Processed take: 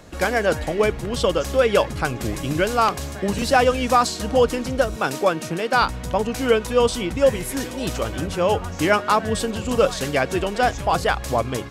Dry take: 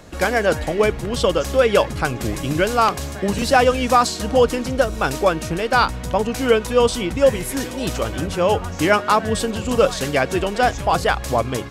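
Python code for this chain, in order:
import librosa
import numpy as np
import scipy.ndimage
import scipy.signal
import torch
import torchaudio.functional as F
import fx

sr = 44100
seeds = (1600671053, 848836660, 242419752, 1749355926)

y = fx.highpass(x, sr, hz=130.0, slope=24, at=(4.96, 5.82))
y = y * librosa.db_to_amplitude(-2.0)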